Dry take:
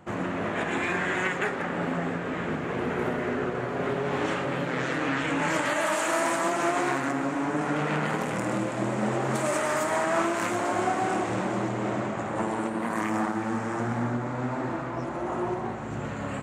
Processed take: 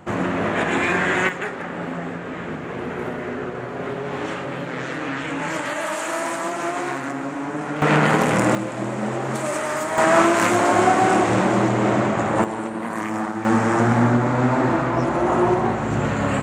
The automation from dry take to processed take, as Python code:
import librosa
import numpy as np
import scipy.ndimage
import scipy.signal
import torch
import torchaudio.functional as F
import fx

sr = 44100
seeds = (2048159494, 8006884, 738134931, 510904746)

y = fx.gain(x, sr, db=fx.steps((0.0, 7.5), (1.29, 0.5), (7.82, 11.0), (8.55, 2.0), (9.98, 10.0), (12.44, 2.0), (13.45, 11.5)))